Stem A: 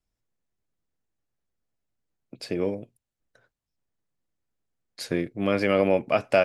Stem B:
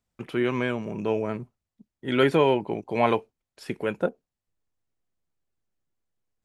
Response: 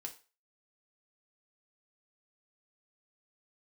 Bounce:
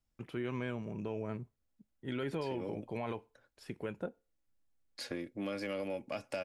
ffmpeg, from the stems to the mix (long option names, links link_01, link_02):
-filter_complex "[0:a]aecho=1:1:3.6:0.37,acrossover=split=200|4300[link_01][link_02][link_03];[link_01]acompressor=threshold=-47dB:ratio=4[link_04];[link_02]acompressor=threshold=-34dB:ratio=4[link_05];[link_03]acompressor=threshold=-46dB:ratio=4[link_06];[link_04][link_05][link_06]amix=inputs=3:normalize=0,asoftclip=type=tanh:threshold=-22.5dB,volume=-4.5dB,asplit=2[link_07][link_08];[link_08]volume=-17.5dB[link_09];[1:a]lowshelf=frequency=120:gain=12,volume=-12dB,asplit=2[link_10][link_11];[link_11]volume=-16.5dB[link_12];[2:a]atrim=start_sample=2205[link_13];[link_09][link_12]amix=inputs=2:normalize=0[link_14];[link_14][link_13]afir=irnorm=-1:irlink=0[link_15];[link_07][link_10][link_15]amix=inputs=3:normalize=0,alimiter=level_in=4dB:limit=-24dB:level=0:latency=1:release=90,volume=-4dB"